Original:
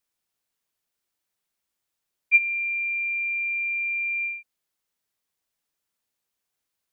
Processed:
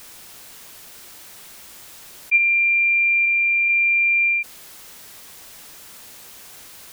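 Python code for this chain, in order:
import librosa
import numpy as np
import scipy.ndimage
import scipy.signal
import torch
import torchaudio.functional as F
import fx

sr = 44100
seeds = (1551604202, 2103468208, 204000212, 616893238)

y = fx.lowpass(x, sr, hz=fx.line((3.25, 2300.0), (3.68, 2300.0)), slope=12, at=(3.25, 3.68), fade=0.02)
y = fx.env_flatten(y, sr, amount_pct=70)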